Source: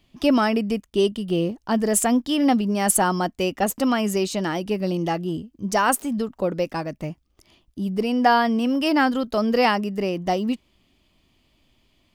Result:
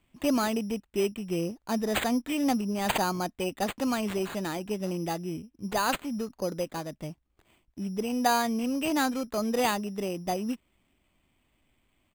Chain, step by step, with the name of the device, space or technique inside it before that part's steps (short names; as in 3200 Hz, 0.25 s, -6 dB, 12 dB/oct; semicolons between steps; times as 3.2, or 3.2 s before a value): crushed at another speed (playback speed 0.8×; sample-and-hold 10×; playback speed 1.25×); gain -7.5 dB